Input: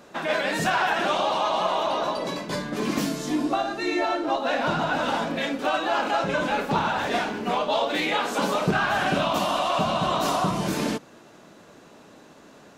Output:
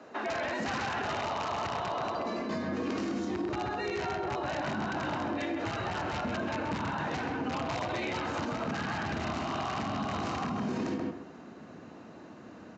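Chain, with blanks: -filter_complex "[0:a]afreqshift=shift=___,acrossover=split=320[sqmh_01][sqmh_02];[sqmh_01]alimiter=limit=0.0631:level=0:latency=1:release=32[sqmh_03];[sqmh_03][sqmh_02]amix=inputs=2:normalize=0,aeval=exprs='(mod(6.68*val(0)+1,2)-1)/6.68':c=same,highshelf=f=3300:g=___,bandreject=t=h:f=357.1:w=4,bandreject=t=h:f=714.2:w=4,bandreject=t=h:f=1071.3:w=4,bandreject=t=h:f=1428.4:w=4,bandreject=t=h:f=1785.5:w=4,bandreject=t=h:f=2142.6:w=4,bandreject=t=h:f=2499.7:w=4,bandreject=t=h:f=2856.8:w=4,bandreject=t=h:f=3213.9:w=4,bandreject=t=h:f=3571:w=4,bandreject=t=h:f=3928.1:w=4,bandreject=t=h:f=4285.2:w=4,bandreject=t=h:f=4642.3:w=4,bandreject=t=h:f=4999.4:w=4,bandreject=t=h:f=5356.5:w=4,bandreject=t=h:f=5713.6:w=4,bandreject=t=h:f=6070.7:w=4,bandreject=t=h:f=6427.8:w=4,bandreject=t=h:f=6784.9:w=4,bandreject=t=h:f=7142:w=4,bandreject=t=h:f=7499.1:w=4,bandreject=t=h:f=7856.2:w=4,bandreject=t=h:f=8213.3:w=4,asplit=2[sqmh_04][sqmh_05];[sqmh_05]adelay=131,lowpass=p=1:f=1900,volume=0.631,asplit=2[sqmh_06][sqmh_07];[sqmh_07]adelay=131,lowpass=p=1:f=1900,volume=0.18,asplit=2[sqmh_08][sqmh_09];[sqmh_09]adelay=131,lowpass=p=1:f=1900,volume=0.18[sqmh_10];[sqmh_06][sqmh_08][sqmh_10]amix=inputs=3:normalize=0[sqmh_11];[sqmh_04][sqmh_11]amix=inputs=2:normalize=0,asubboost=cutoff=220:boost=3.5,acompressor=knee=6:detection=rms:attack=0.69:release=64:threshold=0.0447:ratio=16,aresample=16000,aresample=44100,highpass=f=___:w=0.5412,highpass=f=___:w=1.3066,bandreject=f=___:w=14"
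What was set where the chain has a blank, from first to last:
53, -11.5, 76, 76, 3400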